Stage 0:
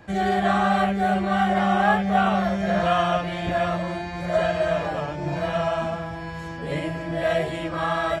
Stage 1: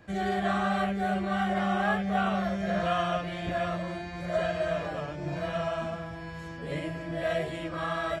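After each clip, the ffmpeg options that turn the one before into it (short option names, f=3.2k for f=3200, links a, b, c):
-af "equalizer=f=860:w=5.4:g=-7,volume=-6dB"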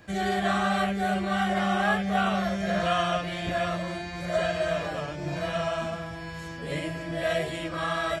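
-af "highshelf=f=2.8k:g=8,volume=1.5dB"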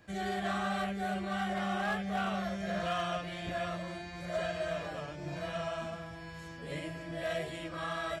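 -af "asoftclip=type=hard:threshold=-19dB,volume=-8dB"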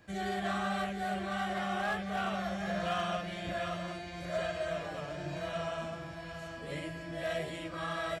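-af "aecho=1:1:756:0.316"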